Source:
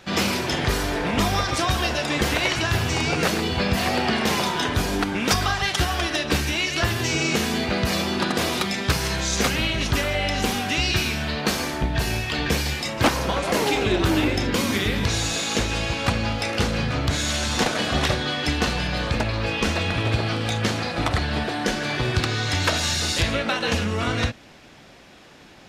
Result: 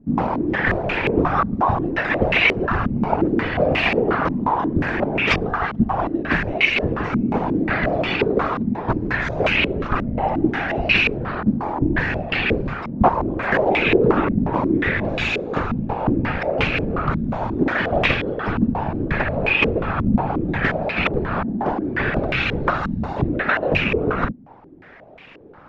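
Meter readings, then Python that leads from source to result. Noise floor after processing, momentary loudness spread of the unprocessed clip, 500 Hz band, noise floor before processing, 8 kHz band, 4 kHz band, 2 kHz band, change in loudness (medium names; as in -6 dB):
-44 dBFS, 3 LU, +4.5 dB, -47 dBFS, under -20 dB, -6.0 dB, +3.5 dB, +2.5 dB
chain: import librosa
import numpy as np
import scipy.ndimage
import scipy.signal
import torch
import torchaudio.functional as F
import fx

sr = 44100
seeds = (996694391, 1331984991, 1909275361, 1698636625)

y = fx.rattle_buzz(x, sr, strikes_db=-25.0, level_db=-21.0)
y = fx.whisperise(y, sr, seeds[0])
y = fx.filter_held_lowpass(y, sr, hz=5.6, low_hz=230.0, high_hz=2500.0)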